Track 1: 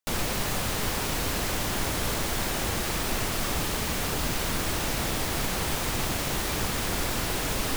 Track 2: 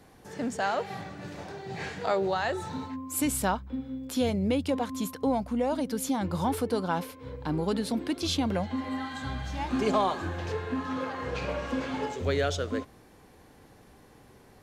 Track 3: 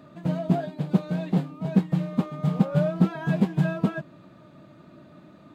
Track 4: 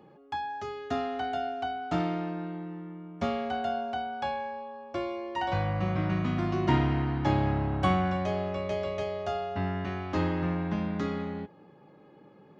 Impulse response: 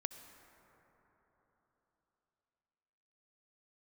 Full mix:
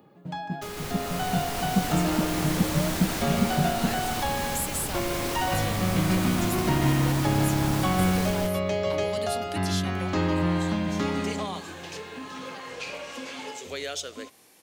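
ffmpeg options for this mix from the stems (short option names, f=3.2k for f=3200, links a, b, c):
-filter_complex "[0:a]acontrast=49,adelay=550,volume=-17.5dB,asplit=2[a][b];[b]volume=-3dB[c];[1:a]highpass=f=400:p=1,acompressor=threshold=-34dB:ratio=1.5,aexciter=amount=1.5:drive=9.1:freq=2.2k,adelay=1450,volume=-10.5dB[d];[2:a]volume=-15.5dB[e];[3:a]aemphasis=mode=production:type=50fm,volume=-3.5dB,asplit=3[f][g][h];[g]volume=-13dB[i];[h]volume=-9.5dB[j];[a][d][f]amix=inputs=3:normalize=0,lowshelf=f=190:g=-7.5,alimiter=level_in=4dB:limit=-24dB:level=0:latency=1:release=387,volume=-4dB,volume=0dB[k];[4:a]atrim=start_sample=2205[l];[i][l]afir=irnorm=-1:irlink=0[m];[c][j]amix=inputs=2:normalize=0,aecho=0:1:151:1[n];[e][k][m][n]amix=inputs=4:normalize=0,equalizer=f=130:t=o:w=2.4:g=4,dynaudnorm=f=130:g=17:m=8dB"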